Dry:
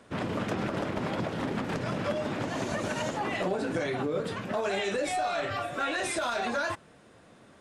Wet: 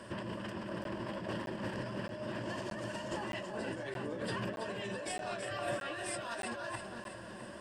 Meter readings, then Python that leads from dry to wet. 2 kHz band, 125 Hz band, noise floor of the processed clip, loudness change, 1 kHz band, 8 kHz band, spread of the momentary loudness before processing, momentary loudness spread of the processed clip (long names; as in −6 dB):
−8.0 dB, −7.5 dB, −47 dBFS, −9.0 dB, −10.0 dB, −6.0 dB, 3 LU, 4 LU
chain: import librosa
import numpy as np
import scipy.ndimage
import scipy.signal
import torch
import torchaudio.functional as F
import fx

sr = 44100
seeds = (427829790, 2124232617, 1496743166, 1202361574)

y = fx.ripple_eq(x, sr, per_octave=1.3, db=10)
y = fx.over_compress(y, sr, threshold_db=-38.0, ratio=-1.0)
y = fx.echo_split(y, sr, split_hz=760.0, low_ms=461, high_ms=328, feedback_pct=52, wet_db=-7.0)
y = fx.buffer_crackle(y, sr, first_s=0.84, period_s=0.62, block=512, kind='zero')
y = y * librosa.db_to_amplitude(-3.0)